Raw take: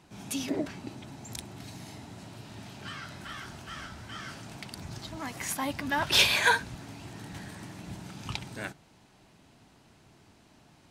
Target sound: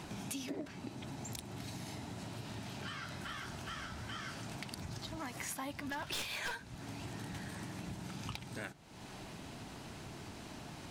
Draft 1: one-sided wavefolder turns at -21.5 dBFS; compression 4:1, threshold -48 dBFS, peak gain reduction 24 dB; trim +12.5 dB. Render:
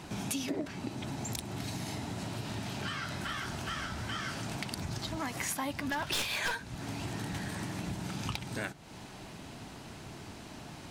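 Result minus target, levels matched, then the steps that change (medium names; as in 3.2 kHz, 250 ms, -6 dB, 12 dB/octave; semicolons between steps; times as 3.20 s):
compression: peak gain reduction -7 dB
change: compression 4:1, threshold -57 dBFS, peak gain reduction 30.5 dB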